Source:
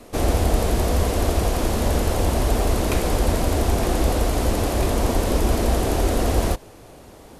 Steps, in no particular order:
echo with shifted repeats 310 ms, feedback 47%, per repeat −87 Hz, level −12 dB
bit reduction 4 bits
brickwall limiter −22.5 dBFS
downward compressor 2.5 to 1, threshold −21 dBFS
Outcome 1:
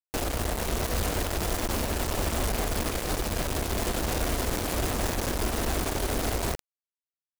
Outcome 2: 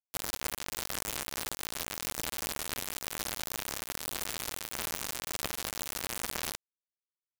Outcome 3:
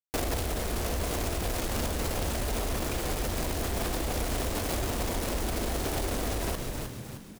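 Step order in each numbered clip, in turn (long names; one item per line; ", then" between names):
downward compressor, then echo with shifted repeats, then bit reduction, then brickwall limiter
downward compressor, then echo with shifted repeats, then brickwall limiter, then bit reduction
bit reduction, then downward compressor, then echo with shifted repeats, then brickwall limiter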